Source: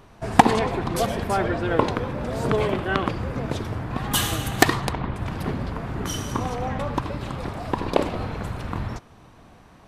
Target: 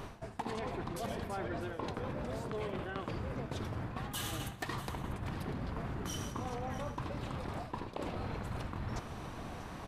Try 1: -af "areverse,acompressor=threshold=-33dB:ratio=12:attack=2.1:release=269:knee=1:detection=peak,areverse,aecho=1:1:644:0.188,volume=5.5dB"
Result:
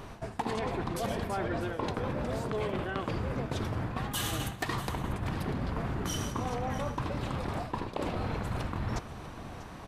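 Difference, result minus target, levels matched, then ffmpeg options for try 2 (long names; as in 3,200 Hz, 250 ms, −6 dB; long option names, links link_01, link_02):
downward compressor: peak gain reduction −6 dB
-af "areverse,acompressor=threshold=-39.5dB:ratio=12:attack=2.1:release=269:knee=1:detection=peak,areverse,aecho=1:1:644:0.188,volume=5.5dB"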